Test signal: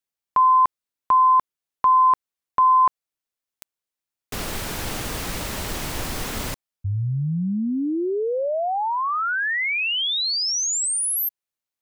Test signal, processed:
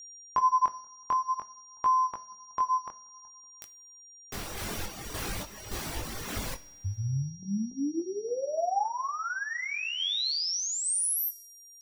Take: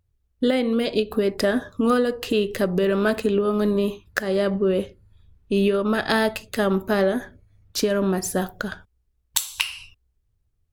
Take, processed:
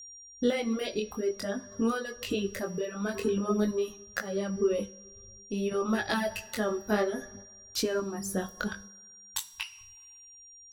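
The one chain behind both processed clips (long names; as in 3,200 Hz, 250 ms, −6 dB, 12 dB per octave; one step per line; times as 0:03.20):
bucket-brigade delay 187 ms, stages 2,048, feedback 44%, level −19 dB
in parallel at 0 dB: downward compressor, threshold −28 dBFS
on the sum: tuned comb filter 99 Hz, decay 1.8 s, mix 70%
sample-and-hold tremolo
chorus effect 0.51 Hz, delay 17.5 ms, depth 6.5 ms
steady tone 5,700 Hz −49 dBFS
reverb reduction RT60 1.5 s
coupled-rooms reverb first 0.38 s, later 1.8 s, from −20 dB, DRR 12.5 dB
level +4.5 dB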